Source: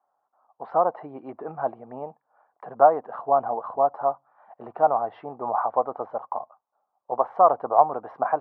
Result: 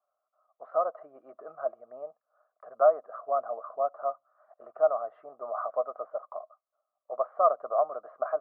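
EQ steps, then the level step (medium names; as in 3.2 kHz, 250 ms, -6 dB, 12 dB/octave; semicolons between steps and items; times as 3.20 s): two resonant band-passes 880 Hz, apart 1 oct; 0.0 dB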